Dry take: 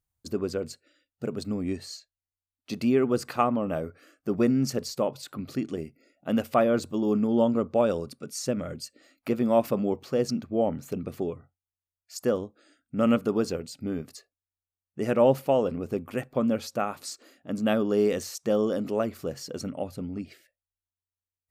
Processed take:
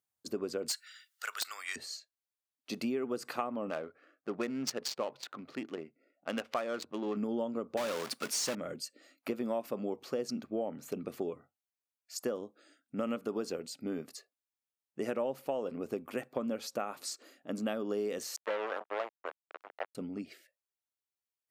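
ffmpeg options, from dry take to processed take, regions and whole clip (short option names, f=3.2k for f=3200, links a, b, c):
-filter_complex "[0:a]asettb=1/sr,asplit=3[a][b][c];[a]atrim=end=0.684[d];[b]atrim=start=0.68:end=1.76,asetpts=PTS-STARTPTS,afade=t=in:d=0.004:c=qsin,afade=t=out:st=1.076:d=0.004:c=qsin,highpass=f=1.4k:w=0.5412,highpass=f=1.4k:w=1.3066,equalizer=f=2.5k:w=7:g=-8.5,aeval=exprs='0.0668*sin(PI/2*4.47*val(0)/0.0668)':c=same[e];[c]atrim=start=1.756[f];[d][e]acrossfade=d=0.004:c1=hsin:c2=qsin[g];[g][f]acrossfade=d=0.004:c1=qsin:c2=hsin,asettb=1/sr,asplit=3[h][i][j];[h]atrim=end=3.704[k];[i]atrim=start=3.7:end=7.17,asetpts=PTS-STARTPTS,afade=t=in:d=0.004:c=qsin,afade=t=out:st=3.466:d=0.004:c=qsin,tiltshelf=f=840:g=-7,adynamicsmooth=sensitivity=5.5:basefreq=1.1k[l];[j]atrim=start=7.166[m];[k][l]acrossfade=d=0.004:c1=hsin:c2=qsin[n];[n][m]acrossfade=d=0.004:c1=qsin:c2=hsin,asettb=1/sr,asplit=3[o][p][q];[o]atrim=end=7.774[r];[p]atrim=start=7.77:end=8.55,asetpts=PTS-STARTPTS,afade=t=in:d=0.004:c=qsin,afade=t=out:st=0.776:d=0.004:c=qsin,equalizer=f=450:t=o:w=1.4:g=-7,acrusher=bits=2:mode=log:mix=0:aa=0.000001,asplit=2[s][t];[t]highpass=f=720:p=1,volume=22dB,asoftclip=type=tanh:threshold=-17.5dB[u];[s][u]amix=inputs=2:normalize=0,lowpass=f=6.1k:p=1,volume=-6dB[v];[q]atrim=start=8.546[w];[r][v]acrossfade=d=0.004:c1=hsin:c2=qsin[x];[x][w]acrossfade=d=0.004:c1=qsin:c2=hsin,asettb=1/sr,asplit=3[y][z][aa];[y]atrim=end=18.364[ab];[z]atrim=start=18.36:end=19.95,asetpts=PTS-STARTPTS,afade=t=in:d=0.004:c=qsin,afade=t=out:st=1.586:d=0.004:c=qsin,acrusher=bits=3:mix=0:aa=0.5,acrossover=split=450 3200:gain=0.0631 1 0.1[ac][ad][ae];[ac][ad][ae]amix=inputs=3:normalize=0[af];[aa]atrim=start=19.946[ag];[ab][af]acrossfade=d=0.004:c1=hsin:c2=qsin[ah];[ah][ag]acrossfade=d=0.004:c1=qsin:c2=hsin,highpass=250,acompressor=threshold=-29dB:ratio=6,volume=-2dB"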